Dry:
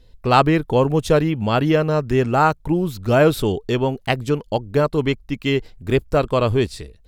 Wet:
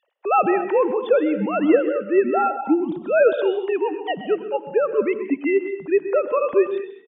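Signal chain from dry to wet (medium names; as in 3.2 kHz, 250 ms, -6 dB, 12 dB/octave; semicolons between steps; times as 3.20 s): formants replaced by sine waves; on a send: delay 128 ms -13 dB; on the sum: gated-style reverb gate 250 ms rising, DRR 10.5 dB; trim -2 dB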